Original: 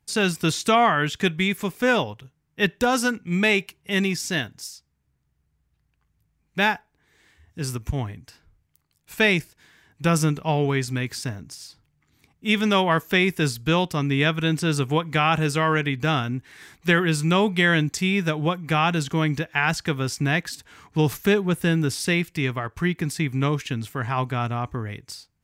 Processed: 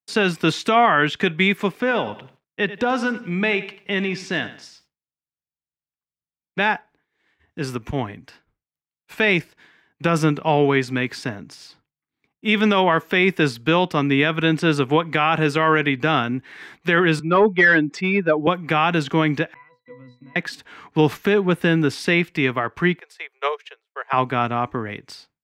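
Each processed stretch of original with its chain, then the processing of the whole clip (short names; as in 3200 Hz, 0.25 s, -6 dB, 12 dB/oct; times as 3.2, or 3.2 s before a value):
1.8–6.6 air absorption 63 m + compressor 2.5:1, threshold -25 dBFS + lo-fi delay 90 ms, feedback 35%, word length 9-bit, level -14 dB
17.19–18.47 spectral contrast raised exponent 1.7 + HPF 210 Hz + overdrive pedal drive 16 dB, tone 1300 Hz, clips at -8.5 dBFS
19.54–20.36 tilt +2.5 dB/oct + compressor 4:1, threshold -26 dBFS + octave resonator B, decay 0.32 s
22.99–24.13 steep high-pass 420 Hz 72 dB/oct + upward expander 2.5:1, over -40 dBFS
whole clip: expander -49 dBFS; three-band isolator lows -15 dB, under 180 Hz, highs -16 dB, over 3900 Hz; limiter -13 dBFS; gain +7 dB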